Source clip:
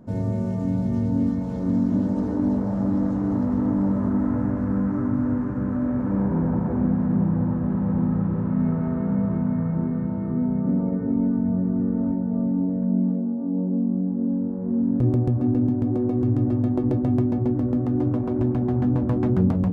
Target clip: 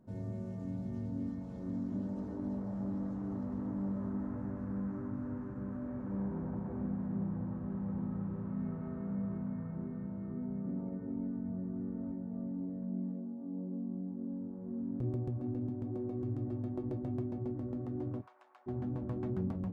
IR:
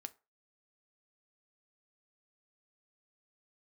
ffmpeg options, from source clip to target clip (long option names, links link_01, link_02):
-filter_complex "[0:a]asplit=3[link_01][link_02][link_03];[link_01]afade=type=out:start_time=18.2:duration=0.02[link_04];[link_02]highpass=frequency=930:width=0.5412,highpass=frequency=930:width=1.3066,afade=type=in:start_time=18.2:duration=0.02,afade=type=out:start_time=18.66:duration=0.02[link_05];[link_03]afade=type=in:start_time=18.66:duration=0.02[link_06];[link_04][link_05][link_06]amix=inputs=3:normalize=0[link_07];[1:a]atrim=start_sample=2205,asetrate=61740,aresample=44100[link_08];[link_07][link_08]afir=irnorm=-1:irlink=0,volume=-7.5dB"